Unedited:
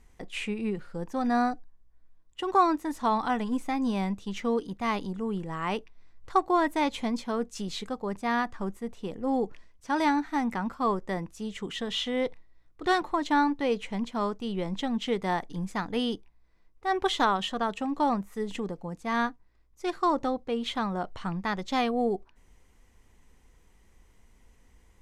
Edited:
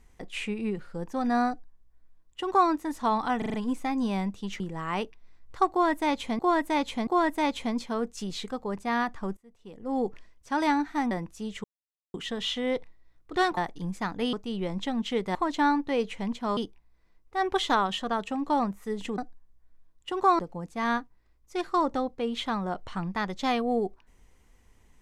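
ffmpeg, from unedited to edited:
ffmpeg -i in.wav -filter_complex "[0:a]asplit=17[link_01][link_02][link_03][link_04][link_05][link_06][link_07][link_08][link_09][link_10][link_11][link_12][link_13][link_14][link_15][link_16][link_17];[link_01]atrim=end=3.422[link_18];[link_02]atrim=start=3.378:end=3.422[link_19];[link_03]atrim=start=3.378:end=3.422[link_20];[link_04]atrim=start=3.378:end=3.422[link_21];[link_05]atrim=start=3.378:end=4.442[link_22];[link_06]atrim=start=5.338:end=7.132[link_23];[link_07]atrim=start=6.448:end=7.132[link_24];[link_08]atrim=start=6.448:end=8.75,asetpts=PTS-STARTPTS,afade=type=out:start_time=2.298:duration=0.004:curve=hsin:silence=0.0794328[link_25];[link_09]atrim=start=8.75:end=10.492,asetpts=PTS-STARTPTS,afade=type=in:duration=0.65:curve=qua:silence=0.0794328[link_26];[link_10]atrim=start=11.108:end=11.64,asetpts=PTS-STARTPTS,afade=type=out:start_time=0.528:duration=0.004:curve=hsin,apad=pad_dur=0.5[link_27];[link_11]atrim=start=11.64:end=13.072,asetpts=PTS-STARTPTS,afade=type=in:duration=0.004:curve=hsin[link_28];[link_12]atrim=start=15.308:end=16.072[link_29];[link_13]atrim=start=14.288:end=15.312[link_30];[link_14]atrim=start=13.068:end=14.292[link_31];[link_15]atrim=start=16.068:end=18.682[link_32];[link_16]atrim=start=1.488:end=2.702[link_33];[link_17]atrim=start=18.678[link_34];[link_18][link_19]acrossfade=duration=0.004:curve1=hsin:curve2=hsin[link_35];[link_35][link_20]acrossfade=duration=0.004:curve1=hsin:curve2=hsin[link_36];[link_36][link_21]acrossfade=duration=0.004:curve1=hsin:curve2=hsin[link_37];[link_37][link_22]acrossfade=duration=0.004:curve1=hsin:curve2=hsin[link_38];[link_38][link_23]acrossfade=duration=0.004:curve1=hsin:curve2=hsin[link_39];[link_39][link_24]acrossfade=duration=0.004:curve1=hsin:curve2=hsin[link_40];[link_25][link_26]concat=n=2:v=0:a=1[link_41];[link_40][link_41]acrossfade=duration=0.004:curve1=hsin:curve2=hsin[link_42];[link_27][link_28]concat=n=2:v=0:a=1[link_43];[link_42][link_43]acrossfade=duration=0.004:curve1=hsin:curve2=hsin[link_44];[link_44][link_29]acrossfade=duration=0.004:curve1=hsin:curve2=hsin[link_45];[link_45][link_30]acrossfade=duration=0.004:curve1=hsin:curve2=hsin[link_46];[link_46][link_31]acrossfade=duration=0.004:curve1=hsin:curve2=hsin[link_47];[link_47][link_32]acrossfade=duration=0.004:curve1=hsin:curve2=hsin[link_48];[link_48][link_33]acrossfade=duration=0.004:curve1=hsin:curve2=hsin[link_49];[link_49][link_34]acrossfade=duration=0.004:curve1=hsin:curve2=hsin" out.wav

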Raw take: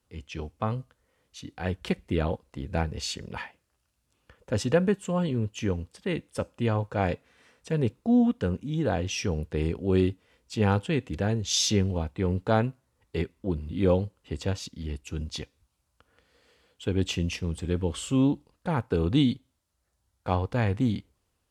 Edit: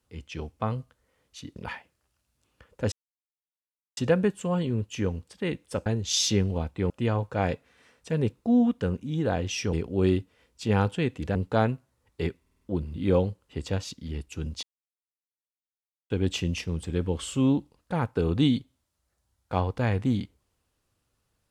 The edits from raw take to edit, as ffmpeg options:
ffmpeg -i in.wav -filter_complex "[0:a]asplit=13[link_01][link_02][link_03][link_04][link_05][link_06][link_07][link_08][link_09][link_10][link_11][link_12][link_13];[link_01]atrim=end=1.562[link_14];[link_02]atrim=start=3.248:end=4.61,asetpts=PTS-STARTPTS,afade=type=out:start_time=1.358:duration=0.004:curve=hsin,apad=pad_dur=1.05[link_15];[link_03]atrim=start=4.61:end=6.502,asetpts=PTS-STARTPTS,afade=type=in:duration=0.004:curve=hsin[link_16];[link_04]atrim=start=11.258:end=12.302[link_17];[link_05]atrim=start=6.498:end=9.332[link_18];[link_06]atrim=start=9.638:end=11.262[link_19];[link_07]atrim=start=12.298:end=13.412[link_20];[link_08]atrim=start=13.358:end=13.412[link_21];[link_09]atrim=start=13.358:end=13.412[link_22];[link_10]atrim=start=13.358:end=13.412[link_23];[link_11]atrim=start=13.358:end=15.38,asetpts=PTS-STARTPTS,afade=type=out:start_time=2.018:duration=0.004:curve=hsin[link_24];[link_12]atrim=start=15.38:end=16.85,asetpts=PTS-STARTPTS,volume=0[link_25];[link_13]atrim=start=16.85,asetpts=PTS-STARTPTS,afade=type=in:duration=0.004:curve=hsin[link_26];[link_15][link_16]concat=n=2:v=0:a=1[link_27];[link_14][link_27]acrossfade=duration=0.004:curve1=hsin:curve2=hsin[link_28];[link_28][link_17]acrossfade=duration=0.004:curve1=hsin:curve2=hsin[link_29];[link_29][link_18]acrossfade=duration=0.004:curve1=hsin:curve2=hsin[link_30];[link_30][link_19]acrossfade=duration=0.004:curve1=hsin:curve2=hsin[link_31];[link_31][link_20]acrossfade=duration=0.004:curve1=hsin:curve2=hsin[link_32];[link_32][link_21]acrossfade=duration=0.004:curve1=hsin:curve2=hsin[link_33];[link_33][link_22]acrossfade=duration=0.004:curve1=hsin:curve2=hsin[link_34];[link_34][link_23]acrossfade=duration=0.004:curve1=hsin:curve2=hsin[link_35];[link_24][link_25][link_26]concat=n=3:v=0:a=1[link_36];[link_35][link_36]acrossfade=duration=0.004:curve1=hsin:curve2=hsin" out.wav

